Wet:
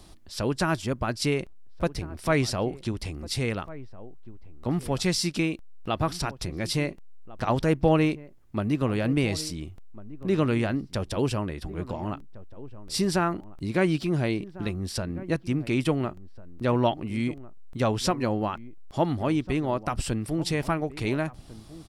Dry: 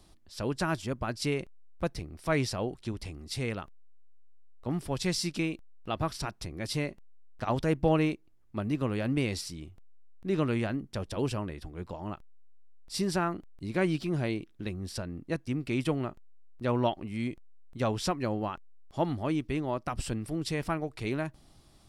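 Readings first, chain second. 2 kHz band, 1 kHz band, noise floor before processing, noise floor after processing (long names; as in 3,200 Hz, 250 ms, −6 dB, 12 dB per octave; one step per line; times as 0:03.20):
+4.5 dB, +4.5 dB, −58 dBFS, −47 dBFS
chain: in parallel at −2 dB: downward compressor, threshold −42 dBFS, peak gain reduction 20 dB
on the sum: slap from a distant wall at 240 metres, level −17 dB
level +3.5 dB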